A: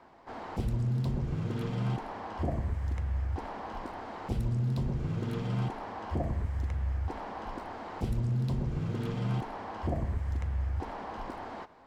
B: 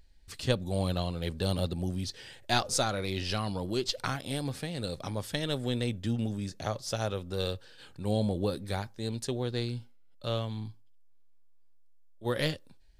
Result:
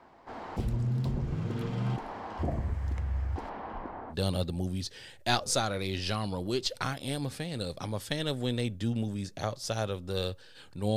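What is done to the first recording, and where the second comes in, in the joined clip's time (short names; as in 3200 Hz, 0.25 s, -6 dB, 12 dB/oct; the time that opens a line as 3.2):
A
3.49–4.15 LPF 3700 Hz -> 1200 Hz
4.12 switch to B from 1.35 s, crossfade 0.06 s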